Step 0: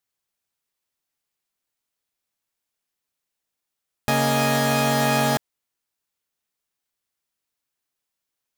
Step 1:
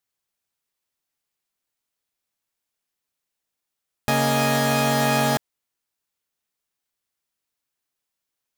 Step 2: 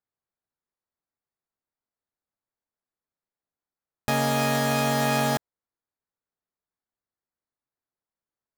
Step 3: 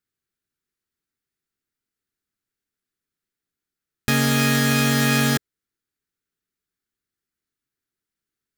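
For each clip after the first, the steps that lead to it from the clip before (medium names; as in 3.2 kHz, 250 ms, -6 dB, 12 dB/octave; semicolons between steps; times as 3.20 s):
no audible change
local Wiener filter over 15 samples; trim -3 dB
high-order bell 750 Hz -13 dB 1.3 oct; trim +7 dB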